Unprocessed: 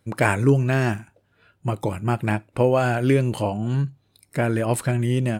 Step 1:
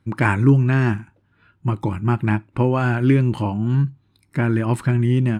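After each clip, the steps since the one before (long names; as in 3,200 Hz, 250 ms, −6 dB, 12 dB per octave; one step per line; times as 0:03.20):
low-pass filter 1,600 Hz 6 dB per octave
flat-topped bell 560 Hz −10.5 dB 1 octave
level +4.5 dB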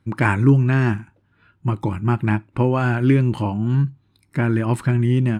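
no processing that can be heard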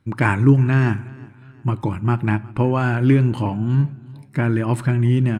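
repeating echo 362 ms, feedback 40%, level −23 dB
rectangular room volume 3,200 cubic metres, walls furnished, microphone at 0.39 metres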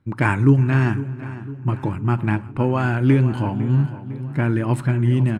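repeating echo 504 ms, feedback 52%, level −14 dB
one half of a high-frequency compander decoder only
level −1 dB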